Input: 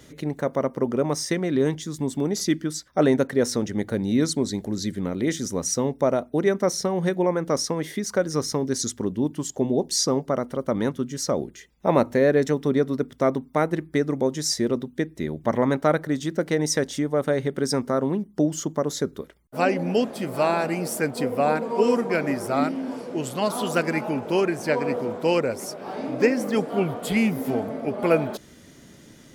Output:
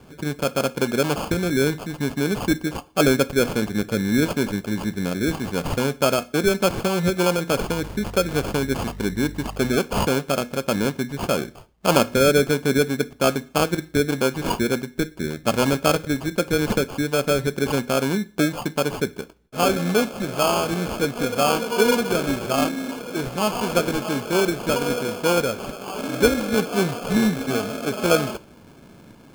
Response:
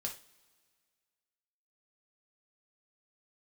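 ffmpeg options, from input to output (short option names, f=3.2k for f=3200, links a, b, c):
-filter_complex "[0:a]asettb=1/sr,asplit=3[a][b][c];[a]atrim=end=7.674[d];[b]atrim=start=7.67:end=9.77,asetpts=PTS-STARTPTS,afade=t=in:d=0.004:c=qsin,afade=t=out:st=2.096:d=0.004:c=qsin,aeval=exprs='val(0)+0.0141*(sin(2*PI*50*n/s)+sin(2*PI*2*50*n/s)/2+sin(2*PI*3*50*n/s)/3+sin(2*PI*4*50*n/s)/4+sin(2*PI*5*50*n/s)/5)':c=same[e];[c]atrim=start=9.766[f];[d][e]acrossfade=d=0.004:c1=hsin:c2=qsin[g];[g][f]acrossfade=d=0.004:c1=qsin:c2=hsin,acrusher=samples=23:mix=1:aa=0.000001,asplit=2[h][i];[1:a]atrim=start_sample=2205,afade=t=out:st=0.34:d=0.01,atrim=end_sample=15435[j];[i][j]afir=irnorm=-1:irlink=0,volume=-10dB[k];[h][k]amix=inputs=2:normalize=0"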